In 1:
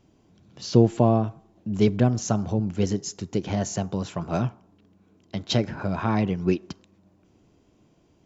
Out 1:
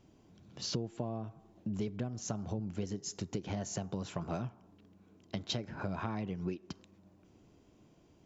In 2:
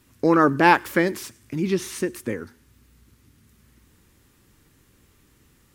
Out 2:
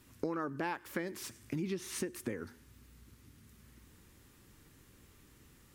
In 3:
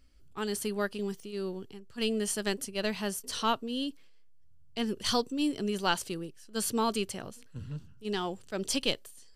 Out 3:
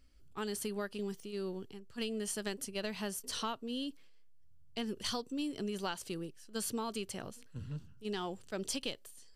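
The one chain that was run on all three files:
compression 10:1, threshold -31 dBFS; trim -2.5 dB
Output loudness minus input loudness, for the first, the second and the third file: -14.5 LU, -18.0 LU, -7.0 LU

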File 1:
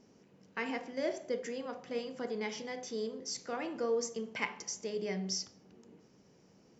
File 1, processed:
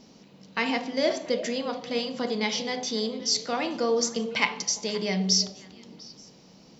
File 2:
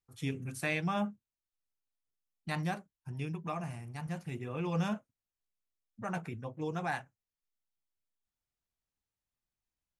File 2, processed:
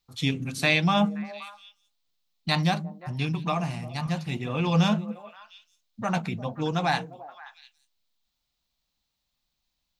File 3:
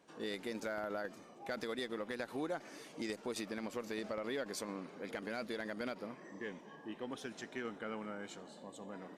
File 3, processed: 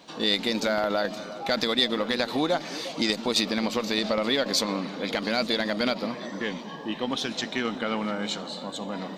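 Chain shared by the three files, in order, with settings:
fifteen-band graphic EQ 100 Hz -7 dB, 400 Hz -7 dB, 1.6 kHz -5 dB, 4 kHz +10 dB, 10 kHz -9 dB; repeats whose band climbs or falls 175 ms, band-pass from 190 Hz, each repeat 1.4 oct, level -9 dB; normalise loudness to -27 LUFS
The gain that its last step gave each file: +12.0 dB, +11.5 dB, +17.0 dB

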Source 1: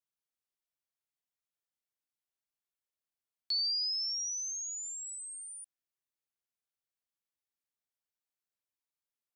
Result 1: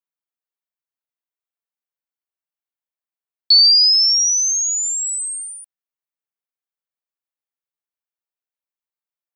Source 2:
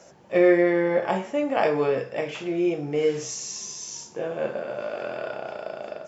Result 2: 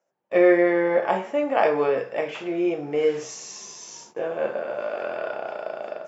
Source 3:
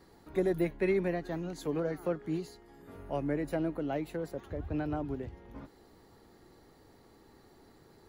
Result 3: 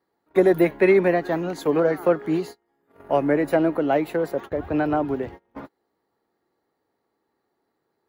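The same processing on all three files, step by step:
gate -45 dBFS, range -28 dB; high-pass 580 Hz 6 dB/octave; peaking EQ 7.2 kHz -11 dB 2.6 oct; peak normalisation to -6 dBFS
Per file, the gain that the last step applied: +30.5 dB, +6.0 dB, +18.0 dB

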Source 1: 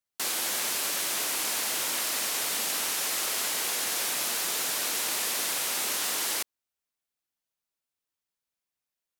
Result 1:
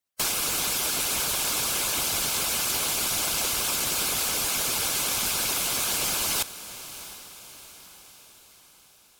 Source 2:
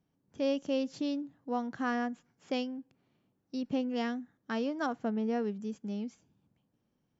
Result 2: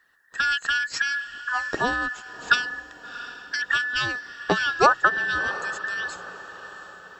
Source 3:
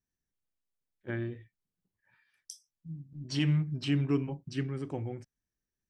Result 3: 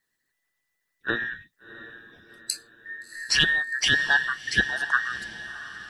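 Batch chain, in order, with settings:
every band turned upside down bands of 2 kHz; harmonic-percussive split harmonic -15 dB; echo that smears into a reverb 705 ms, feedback 51%, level -14.5 dB; normalise loudness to -24 LUFS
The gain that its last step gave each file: +7.5 dB, +20.5 dB, +17.0 dB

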